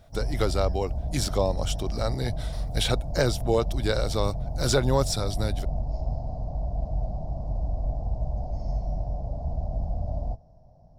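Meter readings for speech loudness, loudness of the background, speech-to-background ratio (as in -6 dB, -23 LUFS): -28.0 LUFS, -32.5 LUFS, 4.5 dB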